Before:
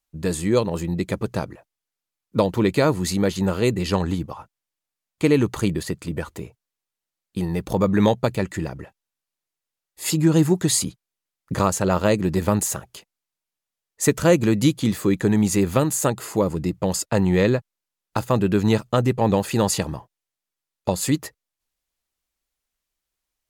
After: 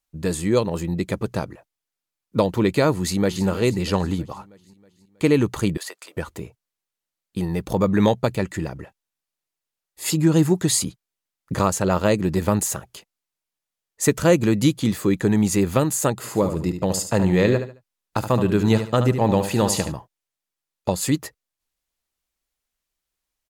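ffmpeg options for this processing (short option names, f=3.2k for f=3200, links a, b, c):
-filter_complex "[0:a]asplit=2[a][b];[b]afade=t=in:st=2.94:d=0.01,afade=t=out:st=3.45:d=0.01,aecho=0:1:320|640|960|1280|1600|1920:0.199526|0.109739|0.0603567|0.0331962|0.0182579|0.0100418[c];[a][c]amix=inputs=2:normalize=0,asettb=1/sr,asplit=3[d][e][f];[d]atrim=end=5.774[g];[e]atrim=start=5.77:end=6.17,asetpts=PTS-STARTPTS,afade=t=in:d=0.004:c=qsin,afade=t=out:st=0.396:d=0.004:c=qsin,highpass=f=600:w=0.5412,highpass=f=600:w=1.3066[h];[f]atrim=start=6.166[i];[g][h]acrossfade=d=0.004:c1=hsin:c2=qsin[j];[j][i]acrossfade=d=0.004:c1=qsin:c2=hsin,asplit=3[k][l][m];[k]afade=t=out:st=16.23:d=0.02[n];[l]aecho=1:1:73|146|219:0.355|0.0993|0.0278,afade=t=in:st=16.23:d=0.02,afade=t=out:st=19.91:d=0.02[o];[m]afade=t=in:st=19.91:d=0.02[p];[n][o][p]amix=inputs=3:normalize=0"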